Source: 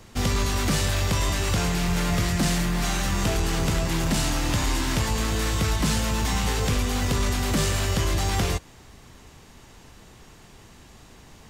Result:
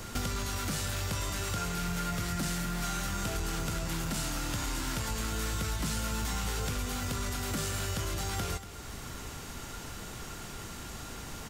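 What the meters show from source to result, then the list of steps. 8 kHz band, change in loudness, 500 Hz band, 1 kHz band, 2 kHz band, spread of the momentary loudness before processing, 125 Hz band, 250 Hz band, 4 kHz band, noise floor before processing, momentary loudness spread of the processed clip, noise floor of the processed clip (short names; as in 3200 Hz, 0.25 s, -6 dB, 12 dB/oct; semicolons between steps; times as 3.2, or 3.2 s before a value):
-6.0 dB, -10.0 dB, -10.0 dB, -7.5 dB, -8.5 dB, 2 LU, -10.0 dB, -10.0 dB, -8.5 dB, -50 dBFS, 9 LU, -43 dBFS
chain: high shelf 7300 Hz +8 dB; small resonant body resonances 1400 Hz, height 15 dB, ringing for 70 ms; compressor 5:1, threshold -39 dBFS, peak gain reduction 18 dB; on a send: echo 0.236 s -12.5 dB; on the sum: gain +5.5 dB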